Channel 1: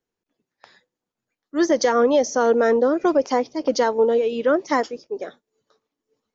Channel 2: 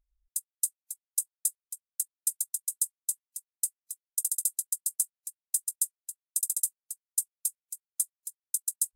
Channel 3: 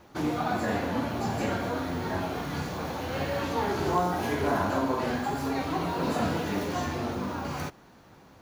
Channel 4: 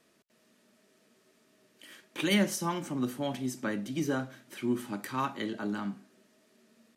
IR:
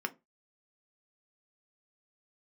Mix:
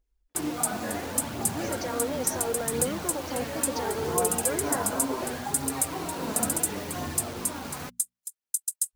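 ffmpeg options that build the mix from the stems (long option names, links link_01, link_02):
-filter_complex "[0:a]alimiter=limit=-17dB:level=0:latency=1,volume=-8.5dB[link_01];[1:a]equalizer=frequency=14000:width_type=o:width=0.44:gain=-4.5,volume=1.5dB[link_02];[2:a]acrusher=bits=5:mix=0:aa=0.000001,adelay=200,volume=-4.5dB[link_03];[3:a]adelay=550,volume=-15.5dB[link_04];[link_01][link_02][link_03][link_04]amix=inputs=4:normalize=0,bandreject=frequency=60:width_type=h:width=6,bandreject=frequency=120:width_type=h:width=6,bandreject=frequency=180:width_type=h:width=6,bandreject=frequency=240:width_type=h:width=6,aphaser=in_gain=1:out_gain=1:delay=4.8:decay=0.31:speed=0.71:type=triangular"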